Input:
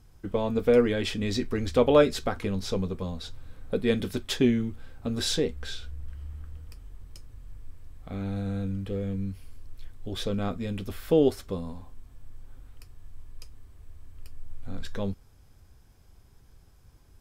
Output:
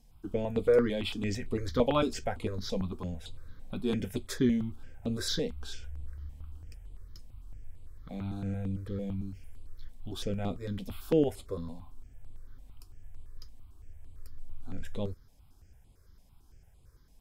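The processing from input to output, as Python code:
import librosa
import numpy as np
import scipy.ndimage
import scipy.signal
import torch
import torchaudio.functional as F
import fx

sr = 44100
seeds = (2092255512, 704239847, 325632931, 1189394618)

y = fx.phaser_held(x, sr, hz=8.9, low_hz=360.0, high_hz=5700.0)
y = y * librosa.db_to_amplitude(-2.0)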